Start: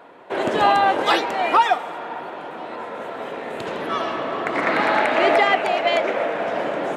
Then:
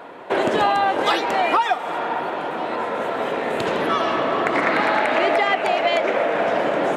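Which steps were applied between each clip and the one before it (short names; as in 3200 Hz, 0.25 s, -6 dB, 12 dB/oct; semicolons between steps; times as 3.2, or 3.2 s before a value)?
compressor 4:1, threshold -24 dBFS, peak gain reduction 11.5 dB; gain +7 dB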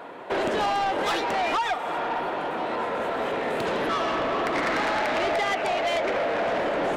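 soft clip -19.5 dBFS, distortion -11 dB; gain -1.5 dB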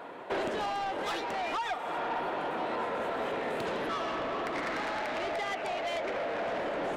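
vocal rider 0.5 s; gain -7.5 dB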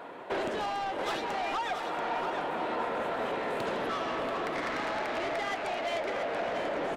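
echo 0.685 s -7 dB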